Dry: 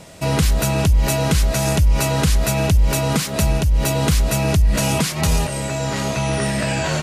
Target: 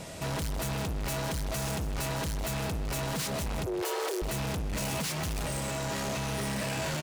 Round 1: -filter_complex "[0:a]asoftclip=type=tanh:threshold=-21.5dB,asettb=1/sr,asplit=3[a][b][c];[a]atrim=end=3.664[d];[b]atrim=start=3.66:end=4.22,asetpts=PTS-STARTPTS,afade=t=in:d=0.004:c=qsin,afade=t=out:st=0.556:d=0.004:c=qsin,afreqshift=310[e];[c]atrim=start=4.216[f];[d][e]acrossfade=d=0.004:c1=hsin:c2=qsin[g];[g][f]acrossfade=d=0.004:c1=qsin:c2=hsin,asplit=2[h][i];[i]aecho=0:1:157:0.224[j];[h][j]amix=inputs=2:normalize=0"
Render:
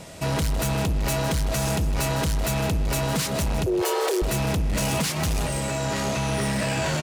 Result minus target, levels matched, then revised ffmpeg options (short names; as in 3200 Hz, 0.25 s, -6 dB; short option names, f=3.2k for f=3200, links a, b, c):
soft clip: distortion -4 dB
-filter_complex "[0:a]asoftclip=type=tanh:threshold=-31.5dB,asettb=1/sr,asplit=3[a][b][c];[a]atrim=end=3.664[d];[b]atrim=start=3.66:end=4.22,asetpts=PTS-STARTPTS,afade=t=in:d=0.004:c=qsin,afade=t=out:st=0.556:d=0.004:c=qsin,afreqshift=310[e];[c]atrim=start=4.216[f];[d][e]acrossfade=d=0.004:c1=hsin:c2=qsin[g];[g][f]acrossfade=d=0.004:c1=qsin:c2=hsin,asplit=2[h][i];[i]aecho=0:1:157:0.224[j];[h][j]amix=inputs=2:normalize=0"